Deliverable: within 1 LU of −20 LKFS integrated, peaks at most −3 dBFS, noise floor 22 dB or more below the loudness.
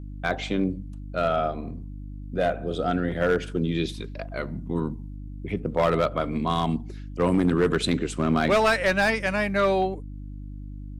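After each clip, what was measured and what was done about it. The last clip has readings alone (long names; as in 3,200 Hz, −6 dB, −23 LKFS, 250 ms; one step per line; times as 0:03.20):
share of clipped samples 0.6%; peaks flattened at −14.5 dBFS; mains hum 50 Hz; hum harmonics up to 300 Hz; level of the hum −35 dBFS; integrated loudness −25.0 LKFS; sample peak −14.5 dBFS; target loudness −20.0 LKFS
→ clipped peaks rebuilt −14.5 dBFS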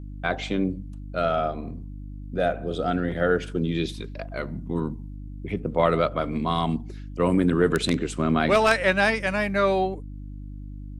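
share of clipped samples 0.0%; mains hum 50 Hz; hum harmonics up to 300 Hz; level of the hum −35 dBFS
→ hum removal 50 Hz, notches 6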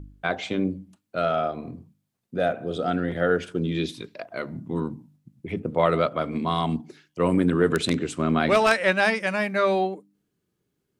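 mains hum none found; integrated loudness −25.0 LKFS; sample peak −5.0 dBFS; target loudness −20.0 LKFS
→ level +5 dB
brickwall limiter −3 dBFS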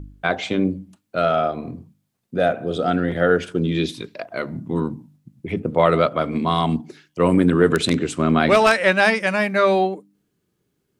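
integrated loudness −20.0 LKFS; sample peak −3.0 dBFS; background noise floor −72 dBFS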